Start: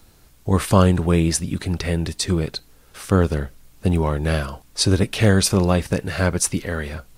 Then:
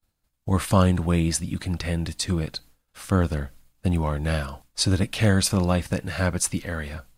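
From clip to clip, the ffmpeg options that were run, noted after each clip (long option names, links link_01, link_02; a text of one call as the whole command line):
ffmpeg -i in.wav -af "bandreject=frequency=5700:width=27,agate=range=-33dB:threshold=-38dB:ratio=3:detection=peak,equalizer=frequency=400:width_type=o:width=0.26:gain=-10.5,volume=-3.5dB" out.wav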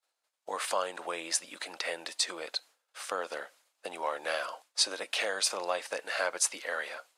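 ffmpeg -i in.wav -af "lowpass=9300,acompressor=threshold=-21dB:ratio=6,highpass=frequency=500:width=0.5412,highpass=frequency=500:width=1.3066" out.wav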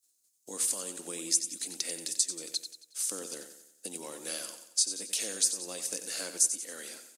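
ffmpeg -i in.wav -filter_complex "[0:a]firequalizer=gain_entry='entry(270,0);entry(620,-22);entry(1000,-24);entry(6600,8)':delay=0.05:min_phase=1,acompressor=threshold=-35dB:ratio=2.5,asplit=2[link_01][link_02];[link_02]aecho=0:1:91|182|273|364|455:0.316|0.145|0.0669|0.0308|0.0142[link_03];[link_01][link_03]amix=inputs=2:normalize=0,volume=7dB" out.wav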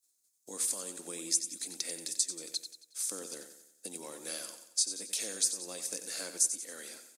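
ffmpeg -i in.wav -af "bandreject=frequency=2900:width=11,volume=-2.5dB" out.wav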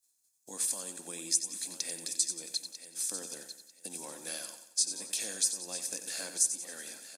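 ffmpeg -i in.wav -af "aecho=1:1:1.2:0.35,aecho=1:1:946|1892|2838:0.251|0.0578|0.0133" out.wav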